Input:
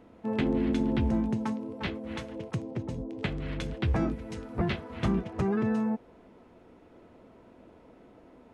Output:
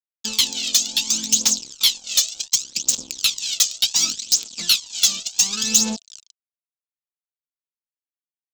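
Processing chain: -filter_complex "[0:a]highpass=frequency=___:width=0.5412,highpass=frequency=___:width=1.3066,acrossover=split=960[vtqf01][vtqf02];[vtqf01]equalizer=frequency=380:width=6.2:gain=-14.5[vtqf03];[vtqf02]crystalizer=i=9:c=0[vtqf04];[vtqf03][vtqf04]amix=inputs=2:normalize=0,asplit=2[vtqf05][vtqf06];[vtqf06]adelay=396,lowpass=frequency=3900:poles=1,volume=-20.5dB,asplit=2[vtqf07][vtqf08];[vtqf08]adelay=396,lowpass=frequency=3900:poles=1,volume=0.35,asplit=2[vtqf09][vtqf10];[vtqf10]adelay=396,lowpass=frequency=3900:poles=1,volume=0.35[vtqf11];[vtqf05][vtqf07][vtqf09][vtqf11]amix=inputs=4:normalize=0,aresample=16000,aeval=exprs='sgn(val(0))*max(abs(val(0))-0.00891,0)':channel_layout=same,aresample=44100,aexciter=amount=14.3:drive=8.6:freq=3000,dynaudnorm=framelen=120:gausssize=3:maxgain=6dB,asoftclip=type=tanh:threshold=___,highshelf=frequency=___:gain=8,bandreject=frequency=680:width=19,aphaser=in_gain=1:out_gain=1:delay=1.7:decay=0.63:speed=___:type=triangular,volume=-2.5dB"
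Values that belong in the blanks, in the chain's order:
200, 200, -13dB, 5500, 0.68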